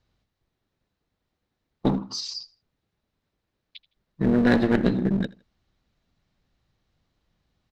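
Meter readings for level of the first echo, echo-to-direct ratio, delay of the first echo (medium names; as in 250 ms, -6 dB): -22.0 dB, -21.5 dB, 81 ms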